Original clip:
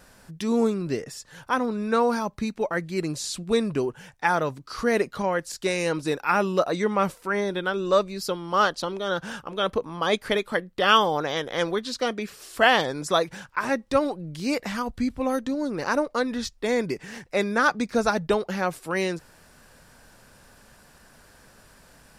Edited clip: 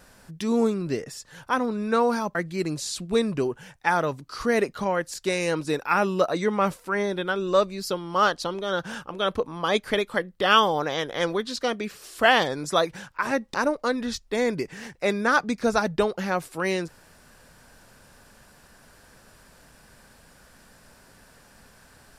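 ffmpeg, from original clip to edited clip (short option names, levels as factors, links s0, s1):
-filter_complex "[0:a]asplit=3[s0][s1][s2];[s0]atrim=end=2.352[s3];[s1]atrim=start=2.728:end=13.922[s4];[s2]atrim=start=15.848[s5];[s3][s4]acrossfade=d=0.004:c1=hsin:c2=hsin[s6];[s6][s5]acrossfade=d=0.004:c1=hsin:c2=hsin"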